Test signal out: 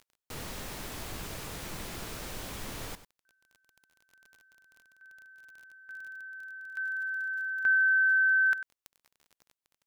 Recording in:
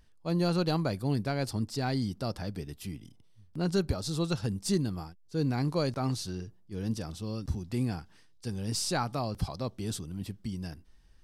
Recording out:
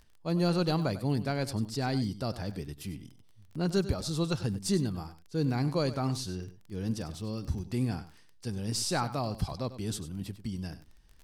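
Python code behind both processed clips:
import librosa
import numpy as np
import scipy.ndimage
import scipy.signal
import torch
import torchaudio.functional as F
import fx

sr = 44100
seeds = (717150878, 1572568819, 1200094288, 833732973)

y = x + 10.0 ** (-14.0 / 20.0) * np.pad(x, (int(97 * sr / 1000.0), 0))[:len(x)]
y = fx.dmg_crackle(y, sr, seeds[0], per_s=29.0, level_db=-43.0)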